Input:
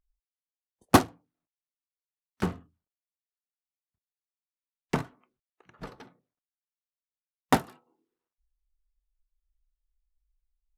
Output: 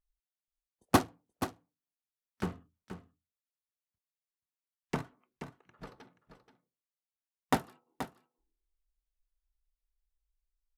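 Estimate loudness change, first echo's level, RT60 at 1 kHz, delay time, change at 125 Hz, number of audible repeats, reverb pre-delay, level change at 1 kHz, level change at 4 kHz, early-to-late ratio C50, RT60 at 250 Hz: -7.5 dB, -10.5 dB, no reverb, 479 ms, -5.5 dB, 1, no reverb, -5.5 dB, -5.5 dB, no reverb, no reverb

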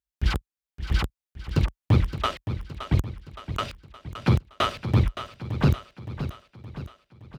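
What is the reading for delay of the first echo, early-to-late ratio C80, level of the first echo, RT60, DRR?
568 ms, no reverb, -11.0 dB, no reverb, no reverb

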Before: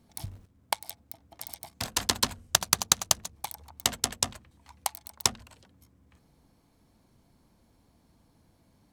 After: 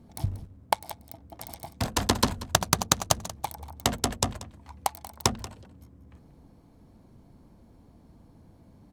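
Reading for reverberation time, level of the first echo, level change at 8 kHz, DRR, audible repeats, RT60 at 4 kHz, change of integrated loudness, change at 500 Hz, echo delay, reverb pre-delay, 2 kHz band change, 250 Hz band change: no reverb, -17.0 dB, -2.0 dB, no reverb, 1, no reverb, 0.0 dB, +8.0 dB, 185 ms, no reverb, +1.5 dB, +10.0 dB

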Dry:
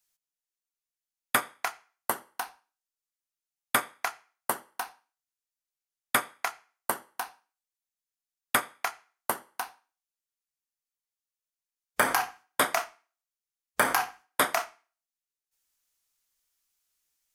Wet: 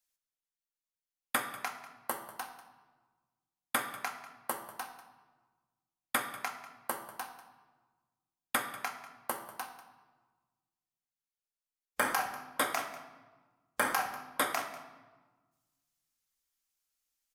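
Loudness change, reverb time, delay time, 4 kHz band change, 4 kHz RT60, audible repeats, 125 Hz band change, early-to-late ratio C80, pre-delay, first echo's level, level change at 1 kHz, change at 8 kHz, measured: -6.0 dB, 1.3 s, 193 ms, -5.5 dB, 0.90 s, 1, -7.0 dB, 10.0 dB, 4 ms, -16.0 dB, -5.5 dB, -6.0 dB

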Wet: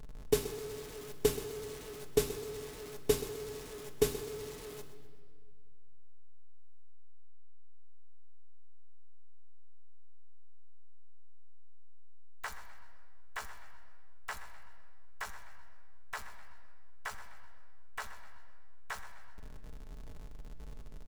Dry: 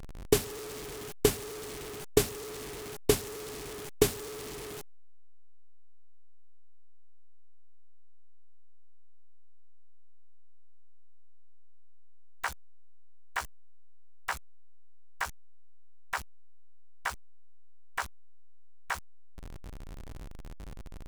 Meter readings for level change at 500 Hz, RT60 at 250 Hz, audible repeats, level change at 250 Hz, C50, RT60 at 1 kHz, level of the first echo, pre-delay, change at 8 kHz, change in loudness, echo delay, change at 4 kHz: -2.5 dB, 2.5 s, 3, -6.5 dB, 9.0 dB, 1.7 s, -14.0 dB, 5 ms, -6.5 dB, -4.5 dB, 127 ms, -6.0 dB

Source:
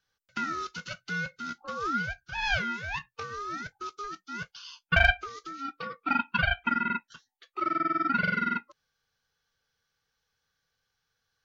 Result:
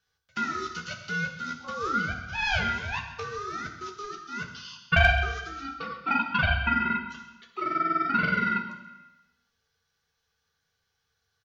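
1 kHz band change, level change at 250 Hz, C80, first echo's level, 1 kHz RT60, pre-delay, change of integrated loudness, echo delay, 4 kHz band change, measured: +2.0 dB, +2.0 dB, 9.5 dB, -15.5 dB, 1.1 s, 3 ms, +2.0 dB, 132 ms, +2.0 dB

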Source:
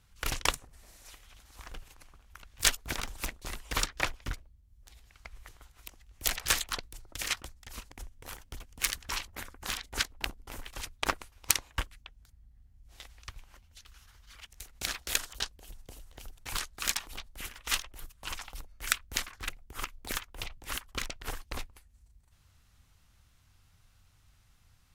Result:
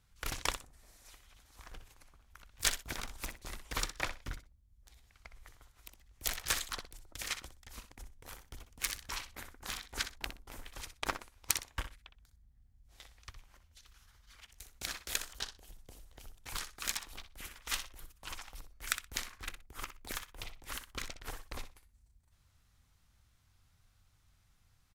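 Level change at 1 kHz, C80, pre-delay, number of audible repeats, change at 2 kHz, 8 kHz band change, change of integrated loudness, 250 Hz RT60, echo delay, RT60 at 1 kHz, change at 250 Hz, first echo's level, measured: -5.0 dB, no reverb, no reverb, 2, -5.5 dB, -5.0 dB, -5.5 dB, no reverb, 62 ms, no reverb, -5.0 dB, -11.0 dB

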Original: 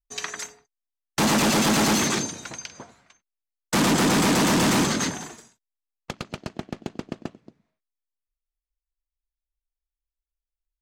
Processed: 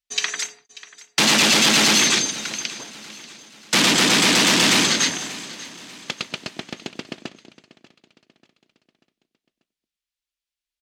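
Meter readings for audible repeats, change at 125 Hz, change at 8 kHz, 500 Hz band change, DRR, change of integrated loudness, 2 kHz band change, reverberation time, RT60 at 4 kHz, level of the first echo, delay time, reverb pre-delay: 3, -4.0 dB, +7.0 dB, -0.5 dB, no reverb, +5.0 dB, +8.0 dB, no reverb, no reverb, -18.0 dB, 589 ms, no reverb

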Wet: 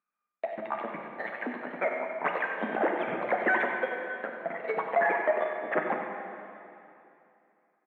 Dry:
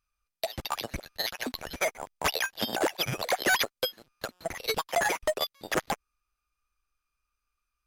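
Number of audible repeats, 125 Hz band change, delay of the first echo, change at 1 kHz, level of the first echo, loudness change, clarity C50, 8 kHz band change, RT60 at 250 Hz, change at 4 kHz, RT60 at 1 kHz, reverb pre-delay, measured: 1, -9.0 dB, 94 ms, +2.5 dB, -9.0 dB, -0.5 dB, 2.0 dB, under -35 dB, 2.8 s, -21.5 dB, 2.7 s, 5 ms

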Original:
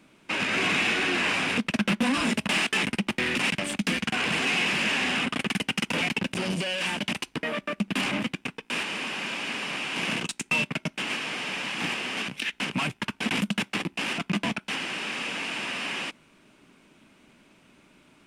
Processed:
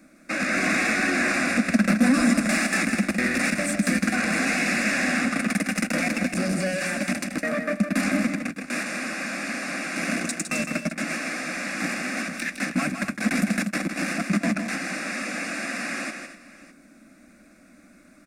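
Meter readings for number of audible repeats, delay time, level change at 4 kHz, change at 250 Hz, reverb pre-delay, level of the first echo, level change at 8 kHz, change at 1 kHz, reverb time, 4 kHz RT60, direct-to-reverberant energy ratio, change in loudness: 3, 159 ms, -6.5 dB, +6.5 dB, no reverb, -7.0 dB, +6.0 dB, +1.5 dB, no reverb, no reverb, no reverb, +2.5 dB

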